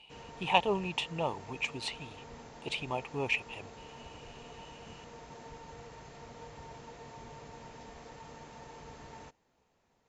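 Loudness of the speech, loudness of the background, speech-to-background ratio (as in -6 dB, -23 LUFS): -33.5 LUFS, -49.5 LUFS, 16.0 dB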